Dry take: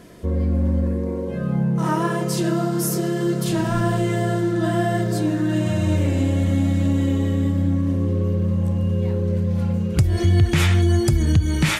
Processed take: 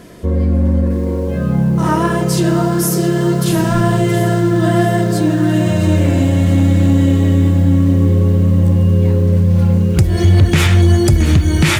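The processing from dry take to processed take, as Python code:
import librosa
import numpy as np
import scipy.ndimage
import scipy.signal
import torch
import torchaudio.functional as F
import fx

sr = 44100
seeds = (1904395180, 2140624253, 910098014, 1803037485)

y = np.clip(x, -10.0 ** (-11.5 / 20.0), 10.0 ** (-11.5 / 20.0))
y = fx.echo_crushed(y, sr, ms=671, feedback_pct=55, bits=7, wet_db=-11.0)
y = y * 10.0 ** (6.5 / 20.0)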